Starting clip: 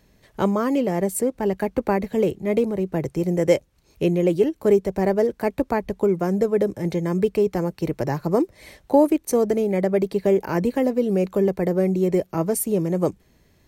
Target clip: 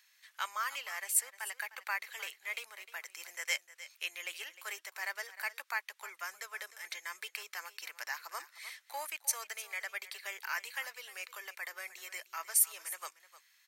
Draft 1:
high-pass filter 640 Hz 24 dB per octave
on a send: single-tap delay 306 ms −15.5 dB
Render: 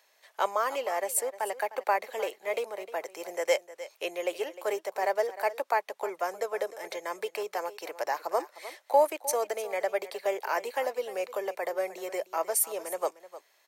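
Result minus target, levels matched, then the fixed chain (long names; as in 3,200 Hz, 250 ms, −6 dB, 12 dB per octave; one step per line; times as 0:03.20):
500 Hz band +19.0 dB
high-pass filter 1,400 Hz 24 dB per octave
on a send: single-tap delay 306 ms −15.5 dB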